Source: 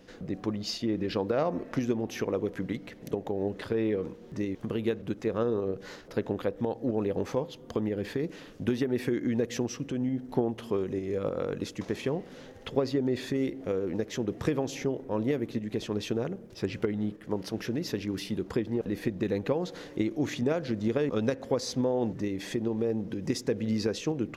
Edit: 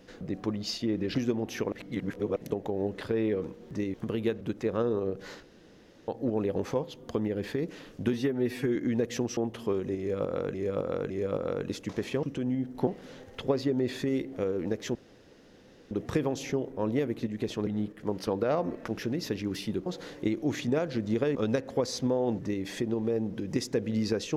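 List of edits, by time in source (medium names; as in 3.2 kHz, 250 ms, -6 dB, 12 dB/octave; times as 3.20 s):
1.15–1.76 s: move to 17.51 s
2.33–2.97 s: reverse
6.04–6.69 s: room tone
8.74–9.16 s: stretch 1.5×
9.77–10.41 s: move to 12.15 s
11.02–11.58 s: loop, 3 plays
14.23 s: insert room tone 0.96 s
15.99–16.91 s: delete
18.49–19.60 s: delete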